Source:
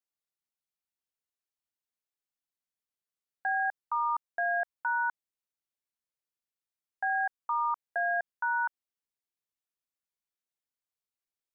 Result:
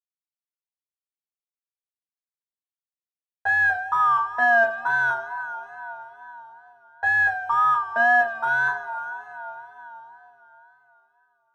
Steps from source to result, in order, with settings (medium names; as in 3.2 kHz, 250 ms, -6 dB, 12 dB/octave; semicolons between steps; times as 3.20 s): companding laws mixed up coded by A; low-pass 1.1 kHz 6 dB/octave; two-slope reverb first 0.32 s, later 4.2 s, from -22 dB, DRR -9 dB; wow and flutter 68 cents; dynamic bell 710 Hz, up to -6 dB, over -36 dBFS, Q 1.4; trim +8 dB